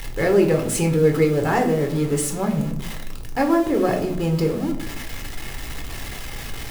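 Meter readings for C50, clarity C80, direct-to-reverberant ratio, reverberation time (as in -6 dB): 10.0 dB, 13.5 dB, 2.5 dB, 0.65 s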